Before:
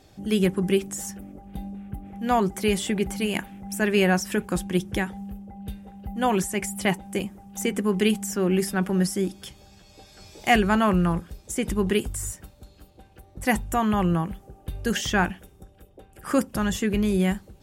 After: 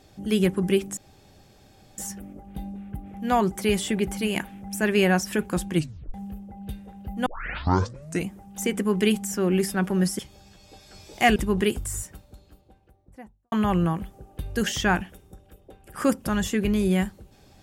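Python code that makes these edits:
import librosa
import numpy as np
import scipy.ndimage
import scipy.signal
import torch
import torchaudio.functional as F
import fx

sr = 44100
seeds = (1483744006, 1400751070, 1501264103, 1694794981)

y = fx.studio_fade_out(x, sr, start_s=12.3, length_s=1.51)
y = fx.edit(y, sr, fx.insert_room_tone(at_s=0.97, length_s=1.01),
    fx.tape_stop(start_s=4.74, length_s=0.39),
    fx.tape_start(start_s=6.25, length_s=1.04),
    fx.cut(start_s=9.18, length_s=0.27),
    fx.cut(start_s=10.62, length_s=1.03), tone=tone)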